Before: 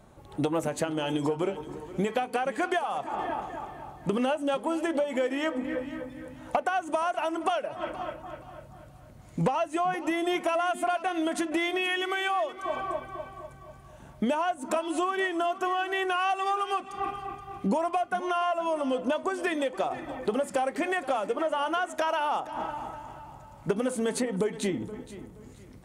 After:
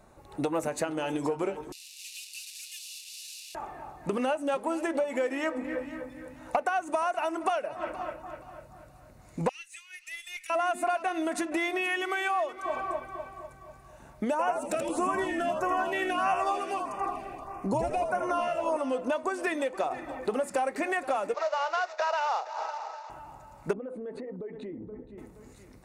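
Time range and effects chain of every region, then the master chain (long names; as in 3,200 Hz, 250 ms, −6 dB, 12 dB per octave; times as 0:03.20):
0:01.72–0:03.55: linear delta modulator 64 kbit/s, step −29.5 dBFS + Chebyshev high-pass filter 2,700 Hz, order 5
0:09.49–0:10.50: Butterworth high-pass 2,100 Hz + tube saturation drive 26 dB, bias 0.3
0:14.31–0:18.77: echo with shifted repeats 81 ms, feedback 52%, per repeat −67 Hz, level −6 dB + auto-filter notch sine 1.6 Hz 970–4,100 Hz
0:21.34–0:23.10: variable-slope delta modulation 32 kbit/s + Butterworth high-pass 440 Hz 48 dB per octave
0:23.73–0:25.18: spectral envelope exaggerated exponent 1.5 + high-frequency loss of the air 490 metres + downward compressor, threshold −33 dBFS
whole clip: parametric band 130 Hz −6 dB 2.2 octaves; notch filter 3,200 Hz, Q 5.6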